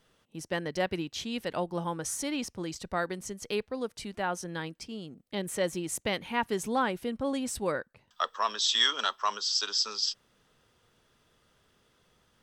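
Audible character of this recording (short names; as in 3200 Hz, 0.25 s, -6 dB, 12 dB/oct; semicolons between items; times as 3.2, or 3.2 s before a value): noise floor -69 dBFS; spectral tilt -2.5 dB/oct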